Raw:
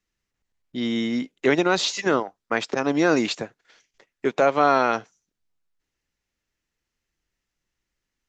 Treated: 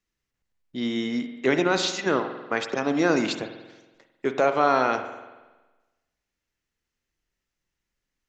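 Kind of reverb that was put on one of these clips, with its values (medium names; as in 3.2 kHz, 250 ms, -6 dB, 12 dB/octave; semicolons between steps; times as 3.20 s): spring tank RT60 1.2 s, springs 46 ms, chirp 30 ms, DRR 8 dB; trim -2.5 dB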